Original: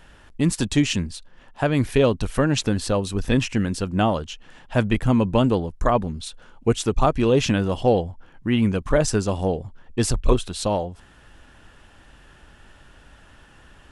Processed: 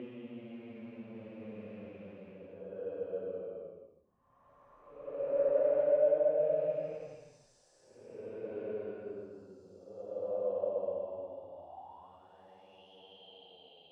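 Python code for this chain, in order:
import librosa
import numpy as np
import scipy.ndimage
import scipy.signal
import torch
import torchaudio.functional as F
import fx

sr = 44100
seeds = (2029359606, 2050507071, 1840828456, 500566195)

y = fx.rattle_buzz(x, sr, strikes_db=-22.0, level_db=-15.0)
y = fx.paulstretch(y, sr, seeds[0], factor=14.0, window_s=0.1, from_s=8.54)
y = fx.filter_sweep_bandpass(y, sr, from_hz=550.0, to_hz=3100.0, start_s=11.53, end_s=12.89, q=7.0)
y = y * 10.0 ** (-6.0 / 20.0)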